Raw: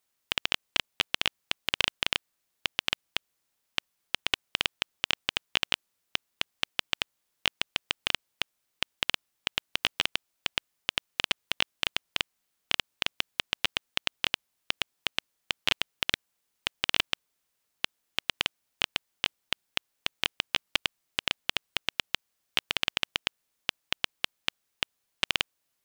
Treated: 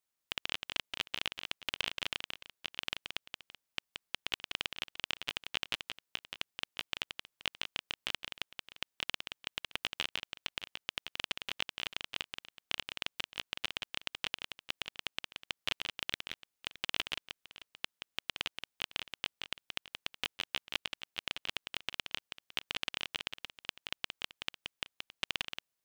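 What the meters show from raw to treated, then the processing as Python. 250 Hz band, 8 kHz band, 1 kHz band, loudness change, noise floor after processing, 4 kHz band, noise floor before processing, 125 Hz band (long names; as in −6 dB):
−8.0 dB, −8.0 dB, −8.0 dB, −8.0 dB, below −85 dBFS, −8.0 dB, −79 dBFS, −8.0 dB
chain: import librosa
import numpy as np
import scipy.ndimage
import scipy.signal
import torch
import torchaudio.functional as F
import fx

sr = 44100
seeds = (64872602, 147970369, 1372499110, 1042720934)

y = fx.echo_multitap(x, sr, ms=(176, 617), db=(-6.0, -17.0))
y = y * 10.0 ** (-9.0 / 20.0)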